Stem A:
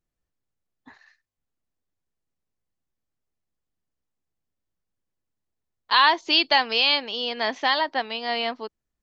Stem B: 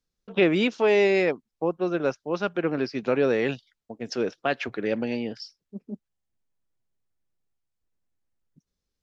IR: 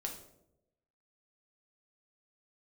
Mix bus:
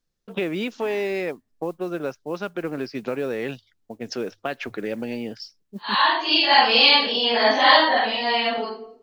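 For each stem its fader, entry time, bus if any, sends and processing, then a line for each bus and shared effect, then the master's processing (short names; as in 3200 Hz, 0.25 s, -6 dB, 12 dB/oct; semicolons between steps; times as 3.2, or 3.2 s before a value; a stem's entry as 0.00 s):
-4.0 dB, 0.00 s, send -4 dB, phase scrambler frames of 0.2 s; AGC gain up to 12.5 dB; spectral gate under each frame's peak -30 dB strong; auto duck -11 dB, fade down 0.65 s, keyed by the second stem
+2.0 dB, 0.00 s, no send, modulation noise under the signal 30 dB; compressor 2.5:1, threshold -28 dBFS, peak gain reduction 9 dB; notches 50/100 Hz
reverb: on, RT60 0.85 s, pre-delay 4 ms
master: dry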